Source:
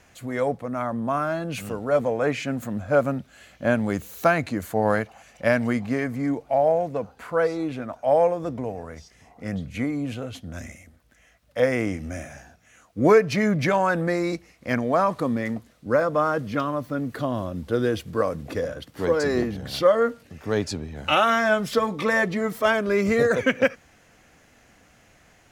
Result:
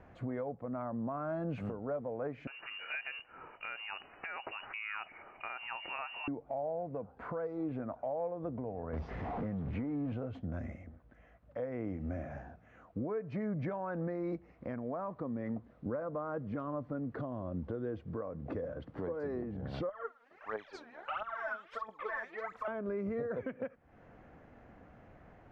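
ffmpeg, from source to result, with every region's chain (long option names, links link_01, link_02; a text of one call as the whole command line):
ffmpeg -i in.wav -filter_complex "[0:a]asettb=1/sr,asplit=3[link_01][link_02][link_03];[link_01]atrim=end=2.474[link_04];[link_02]atrim=start=2.47:end=6.28,asetpts=PTS-STARTPTS,afade=type=in:duration=0.004:curve=qsin,afade=type=out:start_time=3.806:duration=0.004:curve=qsin,equalizer=frequency=910:width_type=o:width=1.8:gain=6.5,lowpass=frequency=2600:width_type=q:width=0.5098,lowpass=frequency=2600:width_type=q:width=0.6013,lowpass=frequency=2600:width_type=q:width=0.9,lowpass=frequency=2600:width_type=q:width=2.563,afreqshift=-3000,acompressor=threshold=-26dB:ratio=4:attack=3.2:release=140:knee=1:detection=peak[link_05];[link_03]atrim=start=6.276[link_06];[link_04][link_05]acrossfade=duration=0.004:curve1=hsin:curve2=qsin[link_07];[link_07][link_06]acrossfade=duration=0.004:curve1=qsin:curve2=hsin,asettb=1/sr,asplit=3[link_08][link_09][link_10];[link_08]atrim=end=8.934[link_11];[link_09]atrim=start=8.93:end=10.13,asetpts=PTS-STARTPTS,afade=type=in:duration=0.004:curve=qsin,afade=type=out:start_time=1.196:duration=0.004:curve=qsin,aeval=exprs='val(0)+0.5*0.0224*sgn(val(0))':channel_layout=same,lowpass=4400,acompressor=threshold=-30dB:ratio=2:attack=3.2:release=140:knee=1:detection=peak[link_12];[link_10]atrim=start=10.126[link_13];[link_11][link_12]acrossfade=duration=0.004:curve1=hsin:curve2=qsin[link_14];[link_14][link_13]acrossfade=duration=0.004:curve1=qsin:curve2=hsin,asettb=1/sr,asplit=3[link_15][link_16][link_17];[link_15]atrim=end=19.894[link_18];[link_16]atrim=start=19.89:end=22.68,asetpts=PTS-STARTPTS,afade=type=in:duration=0.004:curve=qsin,afade=type=out:start_time=2.786:duration=0.004:curve=qsin,highpass=1200,acrossover=split=3100[link_19][link_20];[link_20]adelay=60[link_21];[link_19][link_21]amix=inputs=2:normalize=0,atrim=end_sample=123039,aphaser=in_gain=1:out_gain=1:delay=4.4:decay=0.78:speed=1.5:type=triangular[link_22];[link_17]atrim=start=22.676[link_23];[link_18][link_22]acrossfade=duration=0.004:curve1=hsin:curve2=qsin[link_24];[link_24][link_23]acrossfade=duration=0.004:curve1=qsin:curve2=hsin,lowpass=1100,acompressor=threshold=-36dB:ratio=3,alimiter=level_in=6dB:limit=-24dB:level=0:latency=1:release=406,volume=-6dB,volume=1.5dB" out.wav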